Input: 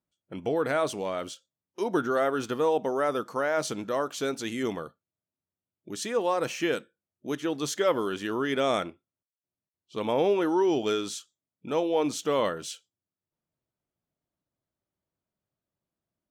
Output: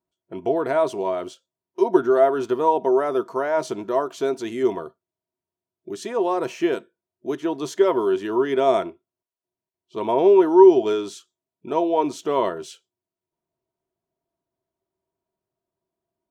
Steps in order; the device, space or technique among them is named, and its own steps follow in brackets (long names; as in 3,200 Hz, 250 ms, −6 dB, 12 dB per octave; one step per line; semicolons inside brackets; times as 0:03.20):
inside a helmet (high-shelf EQ 4,800 Hz −4.5 dB; hollow resonant body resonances 380/670/950 Hz, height 16 dB, ringing for 70 ms)
level −1 dB